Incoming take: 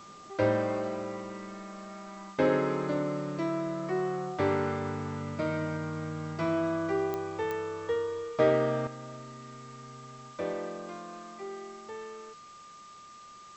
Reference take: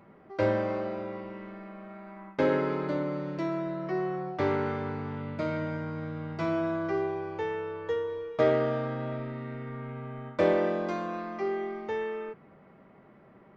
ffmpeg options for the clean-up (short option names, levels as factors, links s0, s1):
-af "adeclick=t=4,bandreject=f=1200:w=30,afwtdn=0.002,asetnsamples=n=441:p=0,asendcmd='8.87 volume volume 10dB',volume=1"